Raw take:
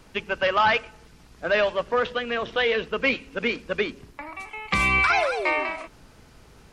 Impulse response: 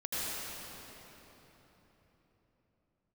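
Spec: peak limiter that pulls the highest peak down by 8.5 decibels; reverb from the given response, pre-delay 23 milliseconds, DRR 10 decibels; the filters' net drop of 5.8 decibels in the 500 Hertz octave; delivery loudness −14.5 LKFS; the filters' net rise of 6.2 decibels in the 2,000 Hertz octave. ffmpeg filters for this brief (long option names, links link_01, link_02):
-filter_complex "[0:a]equalizer=frequency=500:width_type=o:gain=-7.5,equalizer=frequency=2000:width_type=o:gain=8,alimiter=limit=-13dB:level=0:latency=1,asplit=2[link_01][link_02];[1:a]atrim=start_sample=2205,adelay=23[link_03];[link_02][link_03]afir=irnorm=-1:irlink=0,volume=-16.5dB[link_04];[link_01][link_04]amix=inputs=2:normalize=0,volume=8.5dB"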